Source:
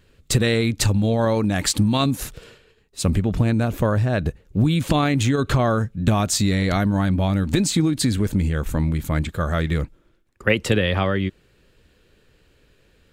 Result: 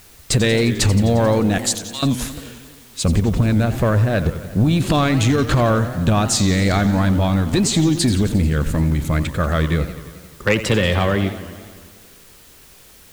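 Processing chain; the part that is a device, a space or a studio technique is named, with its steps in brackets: 1.58–2.03 s: differentiator; compact cassette (saturation -13 dBFS, distortion -17 dB; low-pass 11 kHz; wow and flutter; white noise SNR 29 dB); modulated delay 88 ms, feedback 71%, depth 196 cents, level -13 dB; trim +4.5 dB

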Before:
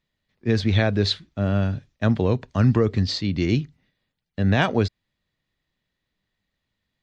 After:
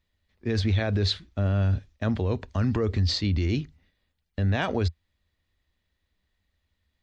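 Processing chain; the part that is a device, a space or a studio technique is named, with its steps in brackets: car stereo with a boomy subwoofer (resonant low shelf 100 Hz +6.5 dB, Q 3; peak limiter -16.5 dBFS, peak gain reduction 9.5 dB)

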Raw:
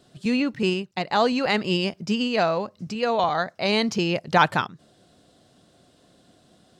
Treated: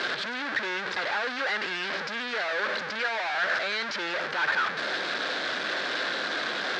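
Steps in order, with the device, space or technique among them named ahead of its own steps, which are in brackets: 2.99–3.44 s: comb 1.3 ms, depth 72%; home computer beeper (one-bit comparator; cabinet simulation 630–4100 Hz, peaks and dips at 710 Hz -7 dB, 1 kHz -4 dB, 1.6 kHz +9 dB, 2.9 kHz -5 dB)

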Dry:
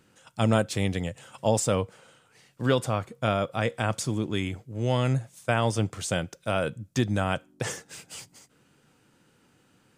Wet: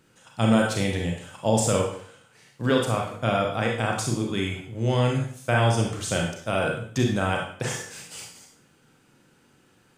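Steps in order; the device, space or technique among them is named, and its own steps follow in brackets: bathroom (reverberation RT60 0.55 s, pre-delay 29 ms, DRR -0.5 dB)

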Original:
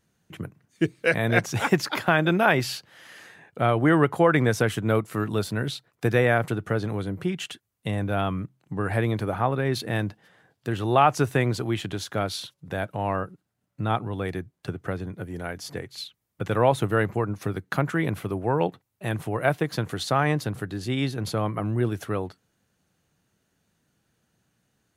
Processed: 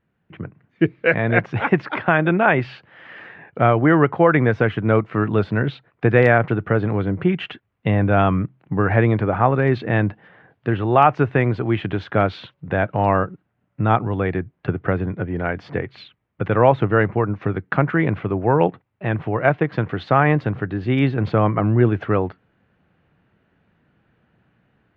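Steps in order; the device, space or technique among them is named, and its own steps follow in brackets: action camera in a waterproof case (low-pass 2.6 kHz 24 dB/octave; level rider gain up to 10 dB; AAC 128 kbps 44.1 kHz)

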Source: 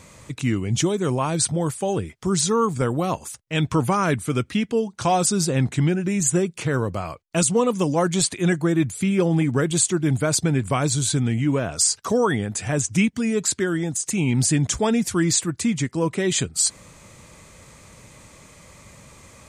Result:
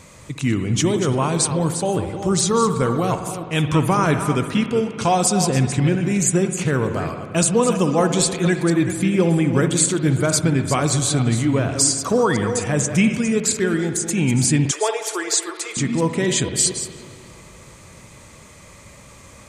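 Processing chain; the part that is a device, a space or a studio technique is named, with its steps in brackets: chunks repeated in reverse 229 ms, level -9.5 dB; dub delay into a spring reverb (filtered feedback delay 335 ms, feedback 61%, low-pass 2.9 kHz, level -22 dB; spring tank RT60 2.1 s, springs 59 ms, chirp 60 ms, DRR 8.5 dB); 14.71–15.77 s: elliptic high-pass 380 Hz, stop band 40 dB; trim +2 dB

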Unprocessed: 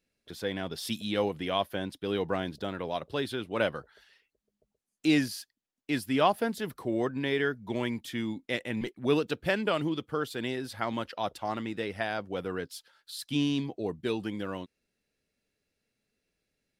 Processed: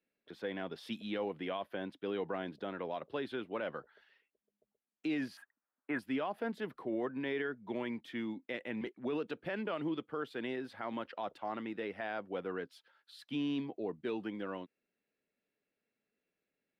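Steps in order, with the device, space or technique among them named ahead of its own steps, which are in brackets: DJ mixer with the lows and highs turned down (three-band isolator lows -18 dB, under 170 Hz, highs -19 dB, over 3.2 kHz; peak limiter -23.5 dBFS, peak gain reduction 12 dB); 5.37–5.99 s: FFT filter 330 Hz 0 dB, 1.4 kHz +13 dB, 4.9 kHz -22 dB, 8.7 kHz +1 dB; trim -4 dB

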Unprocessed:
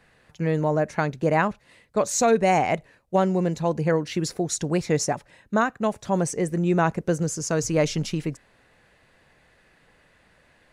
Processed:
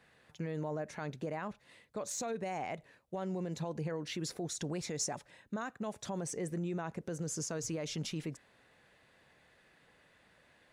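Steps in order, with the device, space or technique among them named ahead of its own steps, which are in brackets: broadcast voice chain (high-pass 99 Hz 6 dB/octave; de-esser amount 50%; compression 4:1, threshold -24 dBFS, peak gain reduction 8.5 dB; peaking EQ 3.5 kHz +4 dB 0.21 oct; peak limiter -24 dBFS, peak gain reduction 10.5 dB); 4.64–6.09 s: dynamic bell 7.2 kHz, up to +6 dB, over -51 dBFS, Q 0.75; trim -6 dB

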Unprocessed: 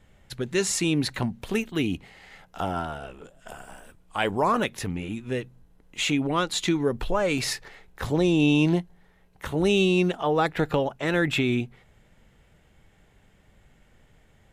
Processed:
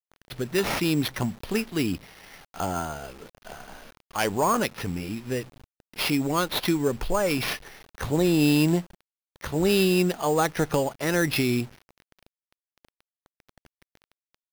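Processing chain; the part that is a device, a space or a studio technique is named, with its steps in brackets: early 8-bit sampler (sample-rate reducer 7.7 kHz, jitter 0%; bit crusher 8-bit)

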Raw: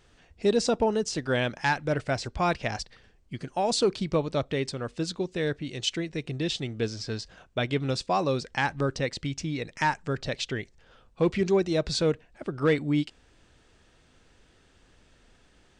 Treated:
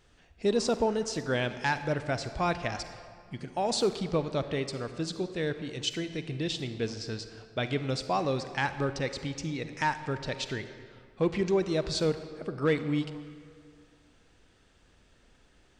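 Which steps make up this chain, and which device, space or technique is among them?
saturated reverb return (on a send at -8 dB: reverberation RT60 2.0 s, pre-delay 38 ms + saturation -25 dBFS, distortion -11 dB); on the sum: trim -3 dB

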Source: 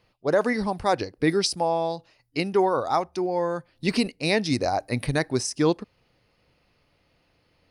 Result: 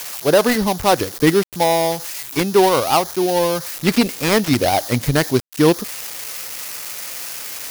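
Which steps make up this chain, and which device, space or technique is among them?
budget class-D amplifier (dead-time distortion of 0.18 ms; zero-crossing glitches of -20 dBFS); trim +8 dB

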